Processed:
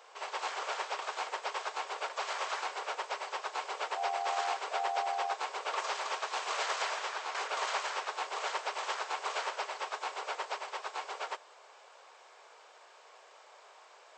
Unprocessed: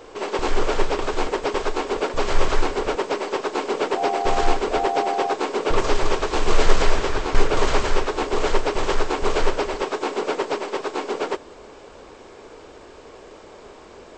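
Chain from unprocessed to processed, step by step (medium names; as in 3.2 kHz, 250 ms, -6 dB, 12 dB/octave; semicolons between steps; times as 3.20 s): high-pass 670 Hz 24 dB/octave; trim -8.5 dB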